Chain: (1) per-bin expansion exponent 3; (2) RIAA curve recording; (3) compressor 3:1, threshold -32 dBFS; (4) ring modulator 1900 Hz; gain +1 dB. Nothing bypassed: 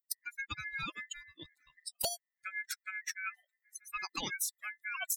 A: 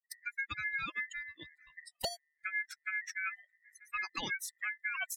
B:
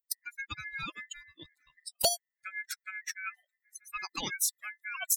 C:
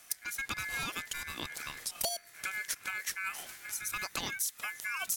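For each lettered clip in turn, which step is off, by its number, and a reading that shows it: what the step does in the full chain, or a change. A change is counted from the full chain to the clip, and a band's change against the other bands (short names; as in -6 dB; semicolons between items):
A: 2, 8 kHz band -6.5 dB; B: 3, momentary loudness spread change +7 LU; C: 1, momentary loudness spread change -8 LU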